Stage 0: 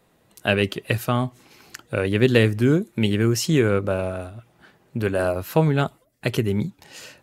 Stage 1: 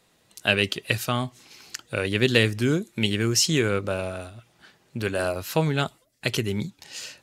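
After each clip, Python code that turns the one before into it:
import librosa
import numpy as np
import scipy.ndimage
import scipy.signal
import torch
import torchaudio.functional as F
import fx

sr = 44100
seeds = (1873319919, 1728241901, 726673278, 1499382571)

y = fx.peak_eq(x, sr, hz=5300.0, db=11.5, octaves=2.6)
y = y * librosa.db_to_amplitude(-5.0)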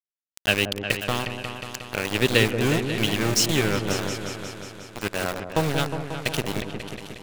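y = np.where(np.abs(x) >= 10.0 ** (-22.5 / 20.0), x, 0.0)
y = fx.echo_opening(y, sr, ms=180, hz=750, octaves=2, feedback_pct=70, wet_db=-6)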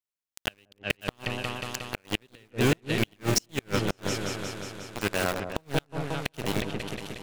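y = fx.gate_flip(x, sr, shuts_db=-10.0, range_db=-37)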